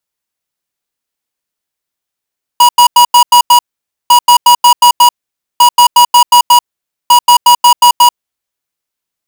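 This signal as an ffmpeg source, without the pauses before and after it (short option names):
-f lavfi -i "aevalsrc='0.668*(2*lt(mod(967*t,1),0.5)-1)*clip(min(mod(mod(t,1.5),0.18),0.09-mod(mod(t,1.5),0.18))/0.005,0,1)*lt(mod(t,1.5),1.08)':d=6:s=44100"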